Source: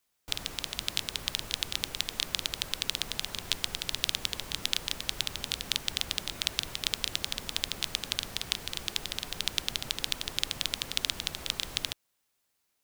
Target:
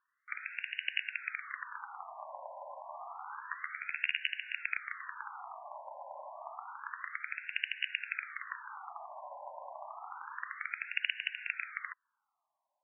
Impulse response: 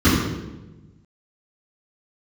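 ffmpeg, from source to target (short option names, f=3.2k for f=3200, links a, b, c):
-filter_complex "[0:a]asettb=1/sr,asplit=3[a][b][c];[a]atrim=end=2.854[d];[b]atrim=start=2.85:end=4.27,asetpts=PTS-STARTPTS,afade=t=in:d=0.004:c=qsin,afade=t=out:st=1.416:d=0.004:c=qsin,asplit=2[e][f];[f]adelay=13,volume=-7.5dB[g];[e][g]amix=inputs=2:normalize=0,atrim=end_sample=62622[h];[c]atrim=start=4.266[i];[d][h]acrossfade=d=0.004:c1=hsin:c2=qsin[j];[j][i]acrossfade=d=0.004:c1=qsin:c2=hsin,afftfilt=real='re*between(b*sr/1024,750*pow(2100/750,0.5+0.5*sin(2*PI*0.29*pts/sr))/1.41,750*pow(2100/750,0.5+0.5*sin(2*PI*0.29*pts/sr))*1.41)':imag='im*between(b*sr/1024,750*pow(2100/750,0.5+0.5*sin(2*PI*0.29*pts/sr))/1.41,750*pow(2100/750,0.5+0.5*sin(2*PI*0.29*pts/sr))*1.41)':win_size=1024:overlap=0.75,volume=6.5dB"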